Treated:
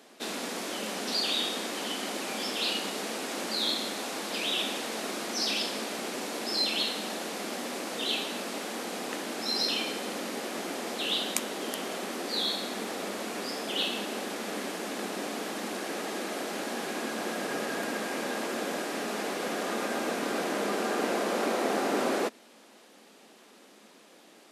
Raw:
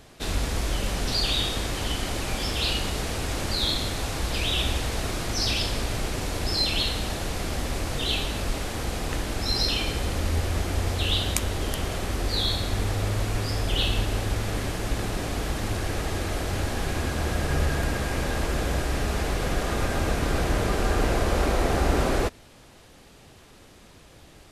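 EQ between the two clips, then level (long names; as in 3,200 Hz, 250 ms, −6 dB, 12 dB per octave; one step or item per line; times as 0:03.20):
elliptic high-pass filter 210 Hz, stop band 70 dB
−2.0 dB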